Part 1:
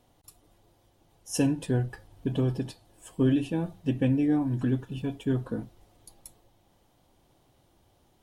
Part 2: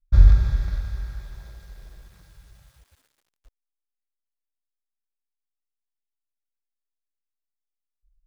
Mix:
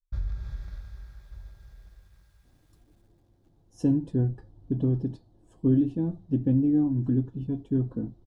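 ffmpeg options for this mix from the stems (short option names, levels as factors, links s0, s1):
-filter_complex "[0:a]firequalizer=gain_entry='entry(320,0);entry(480,-8);entry(2500,-25);entry(3900,-16);entry(12000,-30)':delay=0.05:min_phase=1,adelay=2450,volume=1.26[s0];[1:a]acompressor=threshold=0.158:ratio=3,volume=0.237,asplit=2[s1][s2];[s2]volume=0.188,aecho=0:1:1190:1[s3];[s0][s1][s3]amix=inputs=3:normalize=0"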